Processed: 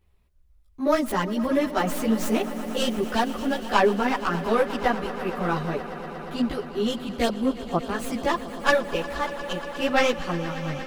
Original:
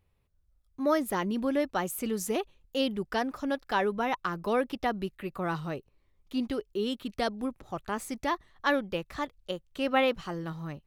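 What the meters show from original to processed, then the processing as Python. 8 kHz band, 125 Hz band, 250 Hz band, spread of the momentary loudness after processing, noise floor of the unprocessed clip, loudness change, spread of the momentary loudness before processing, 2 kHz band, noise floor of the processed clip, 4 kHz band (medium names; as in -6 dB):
+4.5 dB, +7.0 dB, +6.0 dB, 8 LU, -70 dBFS, +6.0 dB, 9 LU, +6.5 dB, -57 dBFS, +6.0 dB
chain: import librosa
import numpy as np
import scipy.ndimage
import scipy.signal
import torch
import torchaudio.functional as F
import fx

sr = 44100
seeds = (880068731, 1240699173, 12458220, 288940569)

y = fx.tracing_dist(x, sr, depth_ms=0.096)
y = fx.chorus_voices(y, sr, voices=6, hz=1.1, base_ms=15, depth_ms=3.0, mix_pct=60)
y = fx.echo_swell(y, sr, ms=118, loudest=5, wet_db=-17.5)
y = y * 10.0 ** (8.0 / 20.0)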